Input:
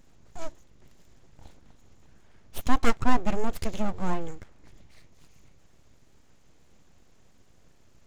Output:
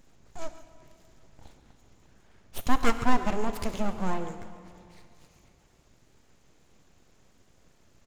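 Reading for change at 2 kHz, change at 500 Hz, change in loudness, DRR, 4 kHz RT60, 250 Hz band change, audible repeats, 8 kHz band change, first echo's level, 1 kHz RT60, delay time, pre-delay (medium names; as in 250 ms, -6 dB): +0.5 dB, 0.0 dB, -0.5 dB, 9.0 dB, 2.1 s, -0.5 dB, 1, no reading, -15.5 dB, 2.6 s, 138 ms, 20 ms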